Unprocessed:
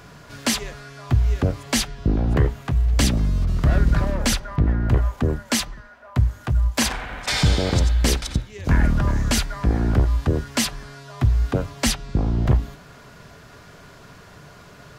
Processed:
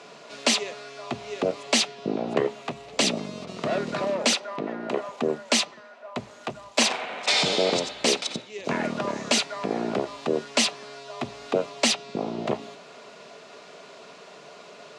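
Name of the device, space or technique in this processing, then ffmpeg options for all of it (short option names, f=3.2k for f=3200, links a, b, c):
television speaker: -filter_complex "[0:a]asettb=1/sr,asplit=3[a][b][c];[a]atrim=end=4.304[d];[b]atrim=start=4.3:end=5.09,asetpts=PTS-STARTPTS,afade=t=in:d=0.004:c=qsin,afade=t=out:st=0.786:d=0.004:c=qsin,highpass=210[e];[c]atrim=start=5.086[f];[d][e]acrossfade=d=0.004:c1=hsin:c2=qsin[g];[g][f]acrossfade=d=0.004:c1=qsin:c2=hsin,highpass=f=230:w=0.5412,highpass=f=230:w=1.3066,equalizer=f=290:t=q:w=4:g=-6,equalizer=f=430:t=q:w=4:g=4,equalizer=f=640:t=q:w=4:g=6,equalizer=f=1.6k:t=q:w=4:g=-7,equalizer=f=2.6k:t=q:w=4:g=5,equalizer=f=3.9k:t=q:w=4:g=4,lowpass=f=8.4k:w=0.5412,lowpass=f=8.4k:w=1.3066"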